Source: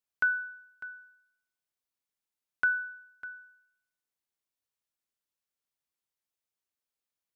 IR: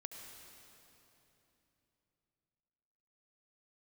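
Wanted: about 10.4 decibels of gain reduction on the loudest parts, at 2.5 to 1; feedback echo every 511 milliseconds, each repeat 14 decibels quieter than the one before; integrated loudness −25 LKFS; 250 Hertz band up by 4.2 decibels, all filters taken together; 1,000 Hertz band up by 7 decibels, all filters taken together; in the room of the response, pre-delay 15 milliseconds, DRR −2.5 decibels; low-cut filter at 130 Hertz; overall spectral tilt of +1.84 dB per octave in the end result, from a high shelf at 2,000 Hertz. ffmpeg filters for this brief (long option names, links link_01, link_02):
-filter_complex "[0:a]highpass=130,equalizer=frequency=250:width_type=o:gain=5,equalizer=frequency=1000:width_type=o:gain=8,highshelf=frequency=2000:gain=8.5,acompressor=threshold=-32dB:ratio=2.5,aecho=1:1:511|1022:0.2|0.0399,asplit=2[link_01][link_02];[1:a]atrim=start_sample=2205,adelay=15[link_03];[link_02][link_03]afir=irnorm=-1:irlink=0,volume=6dB[link_04];[link_01][link_04]amix=inputs=2:normalize=0,volume=9dB"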